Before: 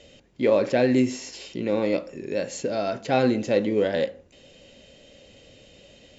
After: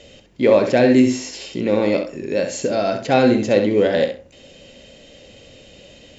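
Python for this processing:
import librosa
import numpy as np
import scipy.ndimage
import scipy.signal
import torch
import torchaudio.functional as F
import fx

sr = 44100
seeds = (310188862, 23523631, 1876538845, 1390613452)

y = fx.echo_feedback(x, sr, ms=66, feedback_pct=15, wet_db=-8.0)
y = y * 10.0 ** (6.0 / 20.0)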